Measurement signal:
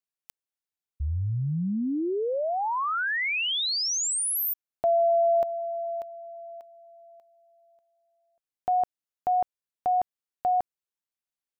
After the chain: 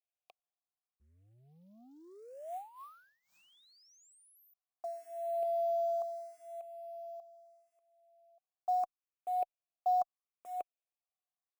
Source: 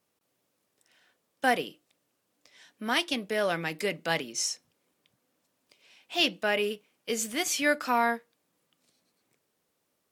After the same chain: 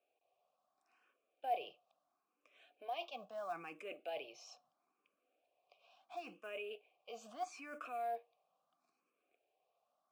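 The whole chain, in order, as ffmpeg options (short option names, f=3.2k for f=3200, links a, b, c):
-filter_complex "[0:a]equalizer=f=390:t=o:w=1.1:g=2.5,areverse,acompressor=threshold=-36dB:ratio=8:attack=5:release=52:knee=6:detection=peak,areverse,asplit=3[a][b][c];[a]bandpass=f=730:t=q:w=8,volume=0dB[d];[b]bandpass=f=1.09k:t=q:w=8,volume=-6dB[e];[c]bandpass=f=2.44k:t=q:w=8,volume=-9dB[f];[d][e][f]amix=inputs=3:normalize=0,acrusher=bits=8:mode=log:mix=0:aa=0.000001,asplit=2[g][h];[h]afreqshift=0.75[i];[g][i]amix=inputs=2:normalize=1,volume=8.5dB"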